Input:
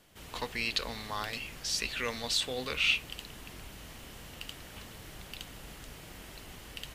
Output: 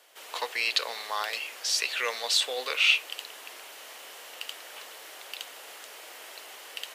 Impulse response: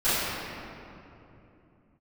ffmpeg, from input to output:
-af "highpass=f=470:w=0.5412,highpass=f=470:w=1.3066,volume=1.88"

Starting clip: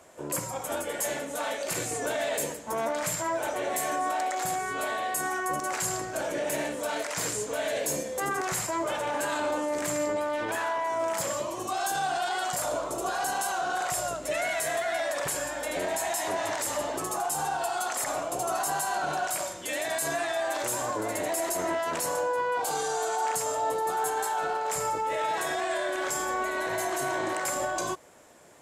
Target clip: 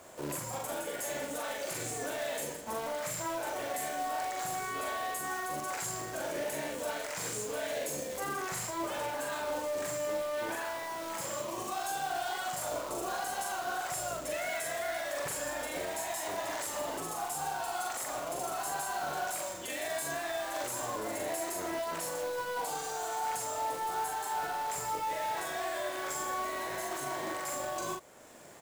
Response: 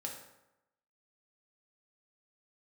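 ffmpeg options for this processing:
-filter_complex "[0:a]alimiter=level_in=1.78:limit=0.0631:level=0:latency=1:release=419,volume=0.562,acrusher=bits=2:mode=log:mix=0:aa=0.000001,asplit=2[s0][s1];[s1]adelay=42,volume=0.668[s2];[s0][s2]amix=inputs=2:normalize=0"

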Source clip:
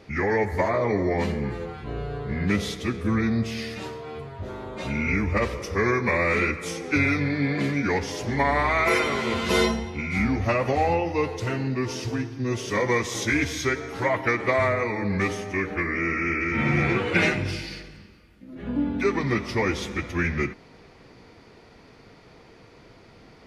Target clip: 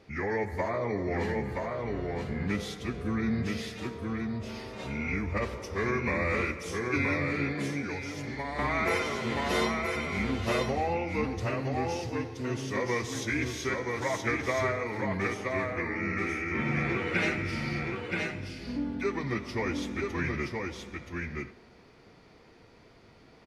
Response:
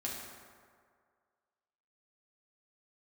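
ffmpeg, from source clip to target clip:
-filter_complex "[0:a]aecho=1:1:974:0.668,asplit=2[s0][s1];[1:a]atrim=start_sample=2205[s2];[s1][s2]afir=irnorm=-1:irlink=0,volume=0.0944[s3];[s0][s3]amix=inputs=2:normalize=0,asettb=1/sr,asplit=3[s4][s5][s6];[s4]atrim=end=7.834[s7];[s5]atrim=start=7.83:end=8.59,asetpts=PTS-STARTPTS,afade=t=in:d=0.004:c=qsin,afade=t=out:st=0.756:d=0.004:c=qsin,acrossover=split=1100|3000[s8][s9][s10];[s8]acompressor=threshold=0.0447:ratio=4[s11];[s9]acompressor=threshold=0.0158:ratio=4[s12];[s10]acompressor=threshold=0.0141:ratio=4[s13];[s11][s12][s13]amix=inputs=3:normalize=0[s14];[s6]atrim=start=8.586[s15];[s7][s14]acrossfade=d=0.004:c1=hsin:c2=qsin[s16];[s16][s15]acrossfade=d=0.004:c1=qsin:c2=hsin,volume=0.398"

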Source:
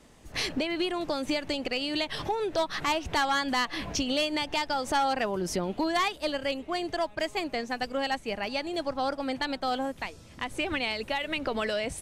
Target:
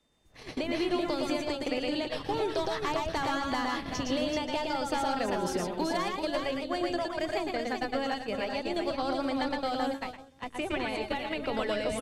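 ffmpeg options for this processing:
-filter_complex "[0:a]acrossover=split=420|1300[s0][s1][s2];[s0]acompressor=threshold=0.0224:ratio=4[s3];[s1]acompressor=threshold=0.02:ratio=4[s4];[s2]acompressor=threshold=0.01:ratio=4[s5];[s3][s4][s5]amix=inputs=3:normalize=0,aecho=1:1:113|121|383|530:0.631|0.376|0.531|0.211,aeval=exprs='val(0)+0.00112*sin(2*PI*3600*n/s)':c=same,bandreject=f=47.64:t=h:w=4,bandreject=f=95.28:t=h:w=4,bandreject=f=142.92:t=h:w=4,bandreject=f=190.56:t=h:w=4,bandreject=f=238.2:t=h:w=4,bandreject=f=285.84:t=h:w=4,bandreject=f=333.48:t=h:w=4,bandreject=f=381.12:t=h:w=4,agate=range=0.141:threshold=0.0224:ratio=16:detection=peak"

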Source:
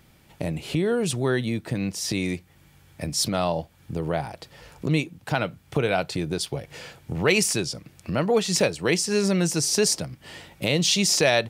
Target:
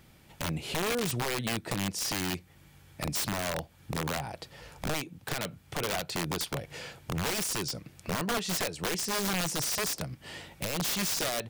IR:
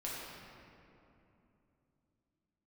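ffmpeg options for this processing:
-af "acompressor=threshold=0.0501:ratio=4,aeval=exprs='(mod(14.1*val(0)+1,2)-1)/14.1':c=same,volume=0.841"

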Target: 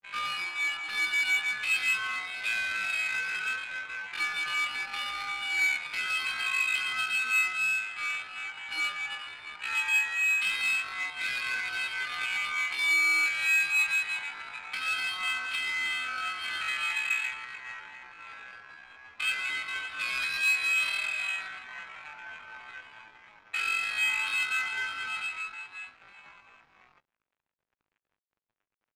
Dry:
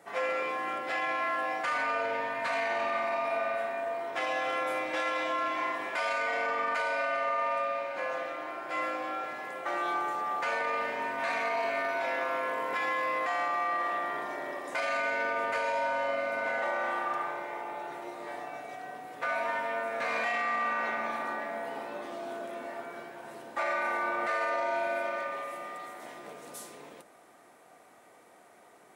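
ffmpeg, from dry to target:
-af "highpass=f=280:t=q:w=0.5412,highpass=f=280:t=q:w=1.307,lowpass=f=2800:t=q:w=0.5176,lowpass=f=2800:t=q:w=0.7071,lowpass=f=2800:t=q:w=1.932,afreqshift=88,equalizer=f=1200:t=o:w=0.32:g=13,flanger=delay=10:depth=9.4:regen=5:speed=0.19:shape=sinusoidal,asetrate=88200,aresample=44100,atempo=0.5,aeval=exprs='sgn(val(0))*max(abs(val(0))-0.00299,0)':c=same,adynamicsmooth=sensitivity=5:basefreq=2000"

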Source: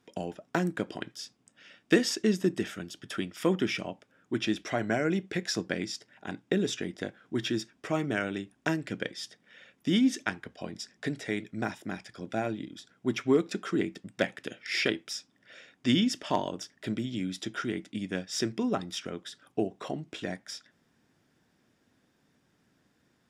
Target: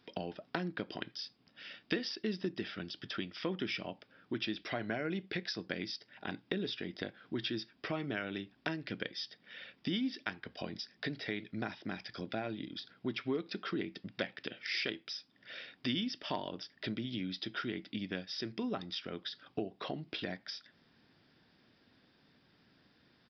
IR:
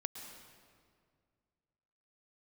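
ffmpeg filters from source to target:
-af "aemphasis=mode=production:type=75fm,acompressor=threshold=0.01:ratio=2.5,aresample=11025,aresample=44100,volume=1.26"

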